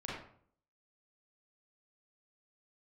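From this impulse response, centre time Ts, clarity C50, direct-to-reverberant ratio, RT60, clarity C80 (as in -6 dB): 58 ms, 0.5 dB, -6.5 dB, 0.55 s, 4.5 dB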